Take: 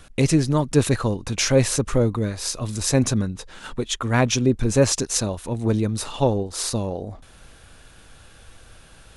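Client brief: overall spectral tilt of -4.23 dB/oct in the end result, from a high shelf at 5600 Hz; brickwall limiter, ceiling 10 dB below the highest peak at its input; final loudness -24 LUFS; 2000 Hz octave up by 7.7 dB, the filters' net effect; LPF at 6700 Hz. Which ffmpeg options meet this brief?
-af "lowpass=6.7k,equalizer=f=2k:t=o:g=9,highshelf=f=5.6k:g=6,volume=-0.5dB,alimiter=limit=-12dB:level=0:latency=1"

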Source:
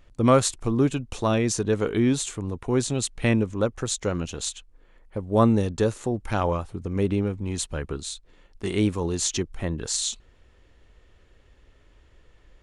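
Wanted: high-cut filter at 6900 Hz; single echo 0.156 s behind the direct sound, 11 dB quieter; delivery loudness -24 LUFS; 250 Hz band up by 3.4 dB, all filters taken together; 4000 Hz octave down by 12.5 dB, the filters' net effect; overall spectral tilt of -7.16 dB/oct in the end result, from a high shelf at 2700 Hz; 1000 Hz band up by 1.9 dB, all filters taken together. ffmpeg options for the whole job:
-af "lowpass=6.9k,equalizer=f=250:t=o:g=4,equalizer=f=1k:t=o:g=4,highshelf=f=2.7k:g=-9,equalizer=f=4k:t=o:g=-7.5,aecho=1:1:156:0.282,volume=-1dB"

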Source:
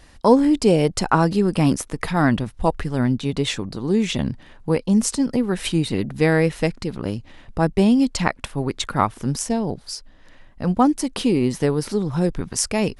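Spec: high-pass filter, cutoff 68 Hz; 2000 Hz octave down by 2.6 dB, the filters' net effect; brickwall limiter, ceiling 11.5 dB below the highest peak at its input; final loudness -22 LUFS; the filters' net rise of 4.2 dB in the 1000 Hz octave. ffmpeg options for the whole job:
-af "highpass=68,equalizer=f=1k:t=o:g=6.5,equalizer=f=2k:t=o:g=-6,volume=1dB,alimiter=limit=-10dB:level=0:latency=1"

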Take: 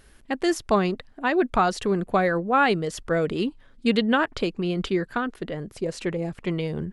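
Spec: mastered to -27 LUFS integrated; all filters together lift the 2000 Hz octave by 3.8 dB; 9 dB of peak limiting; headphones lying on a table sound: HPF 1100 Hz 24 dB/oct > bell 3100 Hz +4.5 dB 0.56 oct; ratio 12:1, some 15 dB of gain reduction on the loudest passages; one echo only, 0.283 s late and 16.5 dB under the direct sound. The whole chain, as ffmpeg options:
-af "equalizer=f=2k:t=o:g=4.5,acompressor=threshold=-30dB:ratio=12,alimiter=level_in=3.5dB:limit=-24dB:level=0:latency=1,volume=-3.5dB,highpass=f=1.1k:w=0.5412,highpass=f=1.1k:w=1.3066,equalizer=f=3.1k:t=o:w=0.56:g=4.5,aecho=1:1:283:0.15,volume=15dB"

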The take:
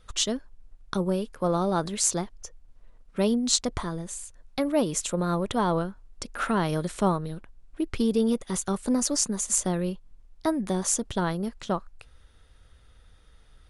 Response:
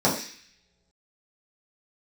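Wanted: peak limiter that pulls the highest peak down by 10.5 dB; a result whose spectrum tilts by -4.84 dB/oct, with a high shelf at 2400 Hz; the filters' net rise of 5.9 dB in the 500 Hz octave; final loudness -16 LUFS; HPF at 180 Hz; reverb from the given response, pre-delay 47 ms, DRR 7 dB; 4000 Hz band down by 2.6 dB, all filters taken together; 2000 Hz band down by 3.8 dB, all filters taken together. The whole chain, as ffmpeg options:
-filter_complex "[0:a]highpass=180,equalizer=f=500:t=o:g=7.5,equalizer=f=2k:t=o:g=-7,highshelf=f=2.4k:g=4,equalizer=f=4k:t=o:g=-5.5,alimiter=limit=-15.5dB:level=0:latency=1,asplit=2[a][b];[1:a]atrim=start_sample=2205,adelay=47[c];[b][c]afir=irnorm=-1:irlink=0,volume=-23.5dB[d];[a][d]amix=inputs=2:normalize=0,volume=9.5dB"

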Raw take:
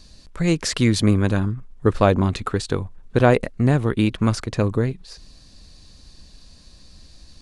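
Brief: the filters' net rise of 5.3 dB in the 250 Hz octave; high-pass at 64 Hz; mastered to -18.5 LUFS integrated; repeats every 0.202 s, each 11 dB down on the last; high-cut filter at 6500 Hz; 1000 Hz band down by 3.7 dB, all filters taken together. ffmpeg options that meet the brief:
-af "highpass=64,lowpass=6.5k,equalizer=f=250:t=o:g=7,equalizer=f=1k:t=o:g=-6,aecho=1:1:202|404|606:0.282|0.0789|0.0221,volume=-0.5dB"

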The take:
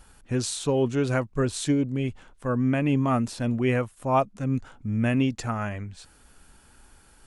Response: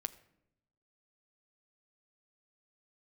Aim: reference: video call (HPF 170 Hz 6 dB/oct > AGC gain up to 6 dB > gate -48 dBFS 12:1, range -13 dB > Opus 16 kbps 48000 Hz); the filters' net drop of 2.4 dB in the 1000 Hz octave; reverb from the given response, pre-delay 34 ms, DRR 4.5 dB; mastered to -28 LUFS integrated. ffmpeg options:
-filter_complex "[0:a]equalizer=f=1k:t=o:g=-3,asplit=2[a][b];[1:a]atrim=start_sample=2205,adelay=34[c];[b][c]afir=irnorm=-1:irlink=0,volume=-3dB[d];[a][d]amix=inputs=2:normalize=0,highpass=f=170:p=1,dynaudnorm=m=6dB,agate=range=-13dB:threshold=-48dB:ratio=12,volume=-1dB" -ar 48000 -c:a libopus -b:a 16k

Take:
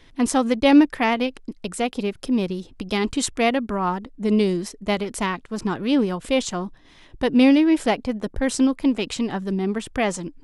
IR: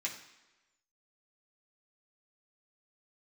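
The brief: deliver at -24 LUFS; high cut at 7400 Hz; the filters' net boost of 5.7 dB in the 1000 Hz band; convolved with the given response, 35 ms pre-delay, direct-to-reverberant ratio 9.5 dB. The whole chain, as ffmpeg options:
-filter_complex "[0:a]lowpass=7.4k,equalizer=f=1k:t=o:g=7.5,asplit=2[a][b];[1:a]atrim=start_sample=2205,adelay=35[c];[b][c]afir=irnorm=-1:irlink=0,volume=-12dB[d];[a][d]amix=inputs=2:normalize=0,volume=-3.5dB"

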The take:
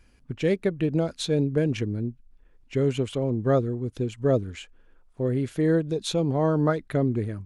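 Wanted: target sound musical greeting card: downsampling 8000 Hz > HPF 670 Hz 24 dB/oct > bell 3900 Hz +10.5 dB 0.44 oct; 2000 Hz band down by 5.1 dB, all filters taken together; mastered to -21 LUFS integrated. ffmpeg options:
-af "equalizer=f=2k:t=o:g=-7.5,aresample=8000,aresample=44100,highpass=f=670:w=0.5412,highpass=f=670:w=1.3066,equalizer=f=3.9k:t=o:w=0.44:g=10.5,volume=16dB"

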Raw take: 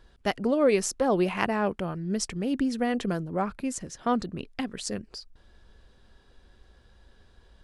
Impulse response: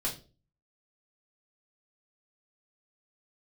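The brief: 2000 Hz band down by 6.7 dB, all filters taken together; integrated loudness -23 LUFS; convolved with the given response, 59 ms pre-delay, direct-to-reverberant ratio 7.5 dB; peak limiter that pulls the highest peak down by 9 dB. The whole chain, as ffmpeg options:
-filter_complex "[0:a]equalizer=f=2k:t=o:g=-8.5,alimiter=limit=-21dB:level=0:latency=1,asplit=2[a][b];[1:a]atrim=start_sample=2205,adelay=59[c];[b][c]afir=irnorm=-1:irlink=0,volume=-12dB[d];[a][d]amix=inputs=2:normalize=0,volume=8dB"

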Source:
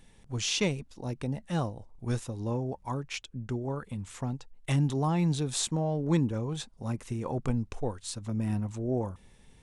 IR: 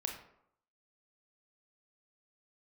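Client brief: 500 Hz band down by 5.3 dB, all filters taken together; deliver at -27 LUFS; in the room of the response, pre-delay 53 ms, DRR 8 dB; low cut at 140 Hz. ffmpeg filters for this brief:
-filter_complex "[0:a]highpass=140,equalizer=f=500:t=o:g=-7,asplit=2[a][b];[1:a]atrim=start_sample=2205,adelay=53[c];[b][c]afir=irnorm=-1:irlink=0,volume=-9dB[d];[a][d]amix=inputs=2:normalize=0,volume=7dB"

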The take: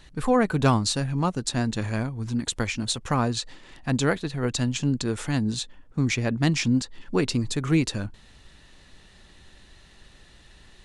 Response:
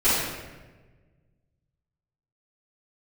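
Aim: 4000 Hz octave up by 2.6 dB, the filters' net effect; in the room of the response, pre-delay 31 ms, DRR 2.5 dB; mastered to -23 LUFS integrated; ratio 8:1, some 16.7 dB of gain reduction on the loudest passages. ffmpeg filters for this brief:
-filter_complex "[0:a]equalizer=f=4k:t=o:g=3,acompressor=threshold=-34dB:ratio=8,asplit=2[a][b];[1:a]atrim=start_sample=2205,adelay=31[c];[b][c]afir=irnorm=-1:irlink=0,volume=-20dB[d];[a][d]amix=inputs=2:normalize=0,volume=13dB"

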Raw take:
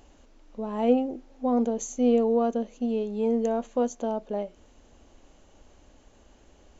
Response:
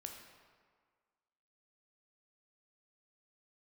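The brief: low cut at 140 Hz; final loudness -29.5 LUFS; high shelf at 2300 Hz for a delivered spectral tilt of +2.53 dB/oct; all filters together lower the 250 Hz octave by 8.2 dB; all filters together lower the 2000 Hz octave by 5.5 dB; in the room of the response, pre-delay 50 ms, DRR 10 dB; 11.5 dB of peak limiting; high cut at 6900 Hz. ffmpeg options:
-filter_complex "[0:a]highpass=140,lowpass=6.9k,equalizer=f=250:t=o:g=-8,equalizer=f=2k:t=o:g=-4,highshelf=f=2.3k:g=-6,alimiter=level_in=1.5dB:limit=-24dB:level=0:latency=1,volume=-1.5dB,asplit=2[a][b];[1:a]atrim=start_sample=2205,adelay=50[c];[b][c]afir=irnorm=-1:irlink=0,volume=-6dB[d];[a][d]amix=inputs=2:normalize=0,volume=5.5dB"

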